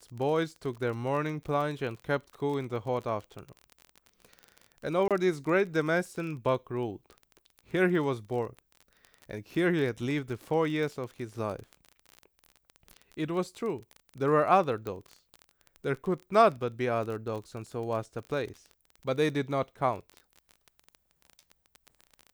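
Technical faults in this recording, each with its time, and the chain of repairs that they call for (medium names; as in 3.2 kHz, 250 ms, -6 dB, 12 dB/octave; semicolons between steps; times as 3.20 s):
crackle 27 per s -35 dBFS
5.08–5.11 s: dropout 27 ms
14.87 s: pop -23 dBFS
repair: de-click; interpolate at 5.08 s, 27 ms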